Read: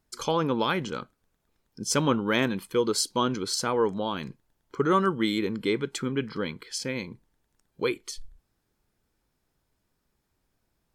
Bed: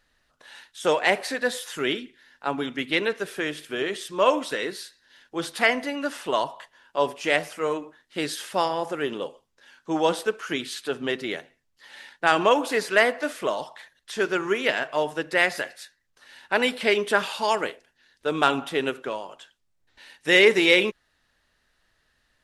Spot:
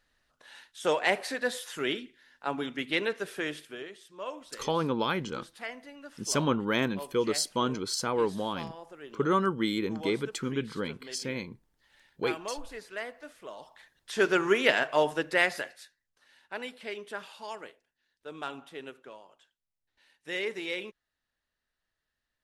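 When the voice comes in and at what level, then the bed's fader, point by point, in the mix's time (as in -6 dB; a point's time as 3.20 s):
4.40 s, -3.0 dB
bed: 3.55 s -5 dB
3.95 s -18.5 dB
13.45 s -18.5 dB
14.23 s 0 dB
15.04 s 0 dB
16.71 s -17 dB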